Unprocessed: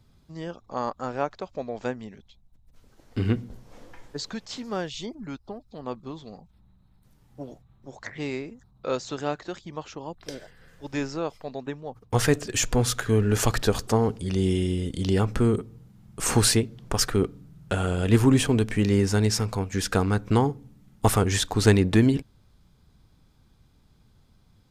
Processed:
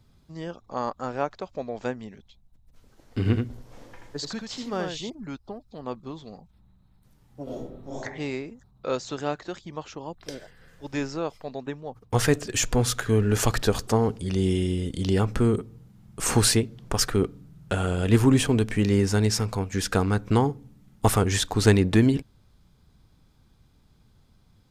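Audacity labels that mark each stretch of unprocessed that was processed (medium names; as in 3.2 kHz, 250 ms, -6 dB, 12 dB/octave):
3.180000	5.100000	delay 81 ms -5 dB
7.430000	8.000000	reverb throw, RT60 0.81 s, DRR -9.5 dB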